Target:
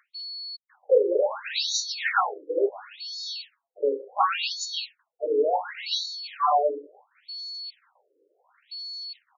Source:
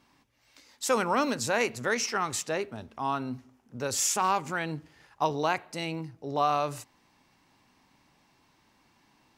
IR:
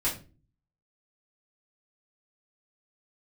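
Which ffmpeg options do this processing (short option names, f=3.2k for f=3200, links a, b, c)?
-filter_complex "[0:a]highshelf=f=2.4k:g=11,areverse,acompressor=mode=upward:threshold=-39dB:ratio=2.5,areverse,acrossover=split=280|2000[a][b][c];[a]adelay=40[d];[c]adelay=130[e];[d][b][e]amix=inputs=3:normalize=0,acrusher=bits=6:mix=0:aa=0.000001,aeval=exprs='val(0)+0.02*sin(2*PI*4400*n/s)':c=same[f];[1:a]atrim=start_sample=2205,asetrate=66150,aresample=44100[g];[f][g]afir=irnorm=-1:irlink=0,afftfilt=real='re*between(b*sr/1024,390*pow(5100/390,0.5+0.5*sin(2*PI*0.7*pts/sr))/1.41,390*pow(5100/390,0.5+0.5*sin(2*PI*0.7*pts/sr))*1.41)':imag='im*between(b*sr/1024,390*pow(5100/390,0.5+0.5*sin(2*PI*0.7*pts/sr))/1.41,390*pow(5100/390,0.5+0.5*sin(2*PI*0.7*pts/sr))*1.41)':win_size=1024:overlap=0.75,volume=4dB"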